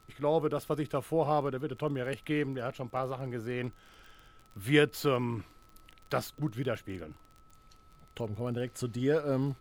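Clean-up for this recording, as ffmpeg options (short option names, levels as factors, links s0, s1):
-af "adeclick=t=4,bandreject=f=1300:w=30,agate=range=0.0891:threshold=0.00316"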